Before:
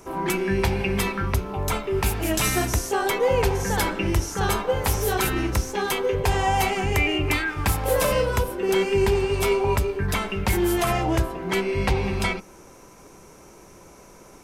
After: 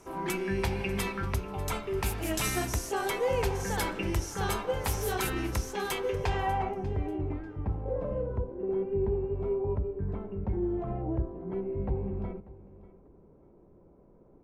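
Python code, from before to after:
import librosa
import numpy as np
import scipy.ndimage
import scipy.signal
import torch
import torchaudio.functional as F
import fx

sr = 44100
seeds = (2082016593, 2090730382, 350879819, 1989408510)

y = fx.filter_sweep_lowpass(x, sr, from_hz=14000.0, to_hz=490.0, start_s=5.99, end_s=6.86, q=0.74)
y = fx.echo_feedback(y, sr, ms=592, feedback_pct=25, wet_db=-19.0)
y = F.gain(torch.from_numpy(y), -7.5).numpy()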